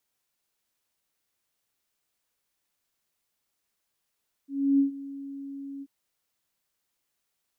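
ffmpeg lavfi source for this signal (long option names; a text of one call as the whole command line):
ffmpeg -f lavfi -i "aevalsrc='0.141*sin(2*PI*277*t)':duration=1.385:sample_rate=44100,afade=type=in:duration=0.31,afade=type=out:start_time=0.31:duration=0.117:silence=0.119,afade=type=out:start_time=1.34:duration=0.045" out.wav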